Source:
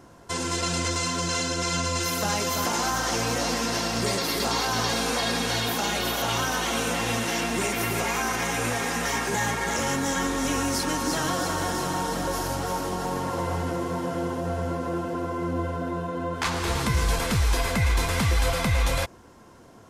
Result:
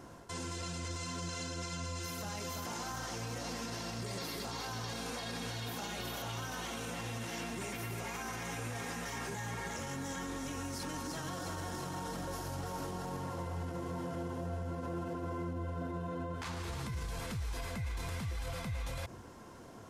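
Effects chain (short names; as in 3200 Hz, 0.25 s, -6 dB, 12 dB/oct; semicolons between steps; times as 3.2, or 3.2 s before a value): reverse; compressor, threshold -32 dBFS, peak gain reduction 12.5 dB; reverse; dynamic EQ 110 Hz, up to +8 dB, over -54 dBFS, Q 1.1; limiter -30 dBFS, peak gain reduction 9.5 dB; gain -1.5 dB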